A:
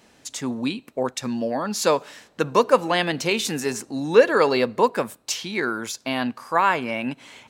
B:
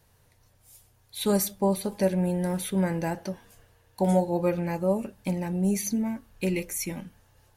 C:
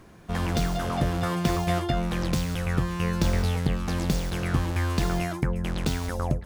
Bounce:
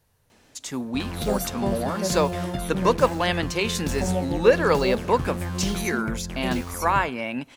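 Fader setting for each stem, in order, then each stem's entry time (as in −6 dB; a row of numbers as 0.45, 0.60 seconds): −2.5, −4.0, −5.5 decibels; 0.30, 0.00, 0.65 seconds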